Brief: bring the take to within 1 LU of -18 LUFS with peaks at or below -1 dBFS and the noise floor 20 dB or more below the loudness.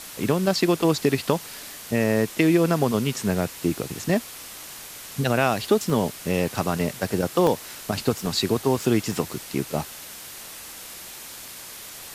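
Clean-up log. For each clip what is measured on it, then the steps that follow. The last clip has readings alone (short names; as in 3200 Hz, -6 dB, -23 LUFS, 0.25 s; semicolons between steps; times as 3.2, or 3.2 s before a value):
dropouts 7; longest dropout 1.2 ms; noise floor -40 dBFS; noise floor target -44 dBFS; loudness -24.0 LUFS; peak -5.0 dBFS; loudness target -18.0 LUFS
-> interpolate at 0.24/1.29/2.04/5.9/7.47/8.26/9.12, 1.2 ms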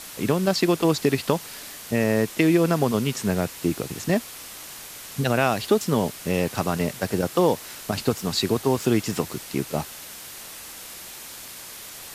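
dropouts 0; noise floor -40 dBFS; noise floor target -44 dBFS
-> noise print and reduce 6 dB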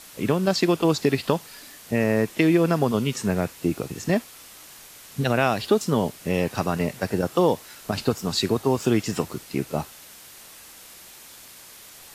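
noise floor -46 dBFS; loudness -24.0 LUFS; peak -5.0 dBFS; loudness target -18.0 LUFS
-> gain +6 dB; limiter -1 dBFS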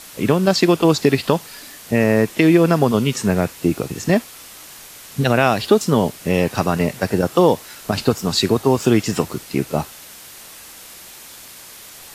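loudness -18.0 LUFS; peak -1.0 dBFS; noise floor -40 dBFS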